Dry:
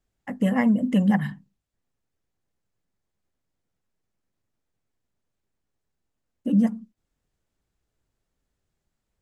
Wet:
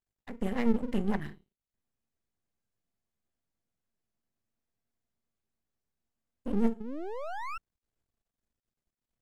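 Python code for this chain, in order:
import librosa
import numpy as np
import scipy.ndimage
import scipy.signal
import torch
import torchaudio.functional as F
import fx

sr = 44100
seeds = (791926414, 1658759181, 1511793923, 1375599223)

y = fx.comb_fb(x, sr, f0_hz=230.0, decay_s=0.36, harmonics='odd', damping=0.0, mix_pct=70)
y = fx.spec_paint(y, sr, seeds[0], shape='rise', start_s=6.8, length_s=0.78, low_hz=200.0, high_hz=1400.0, level_db=-36.0)
y = np.maximum(y, 0.0)
y = F.gain(torch.from_numpy(y), 3.0).numpy()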